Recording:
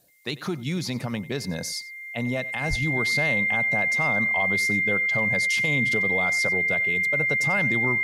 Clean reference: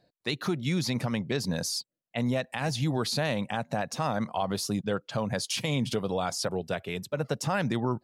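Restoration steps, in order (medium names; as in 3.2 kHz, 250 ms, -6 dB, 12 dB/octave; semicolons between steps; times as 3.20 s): band-stop 2.1 kHz, Q 30; 2.69–2.81 s: high-pass 140 Hz 24 dB/octave; expander -28 dBFS, range -21 dB; inverse comb 93 ms -19 dB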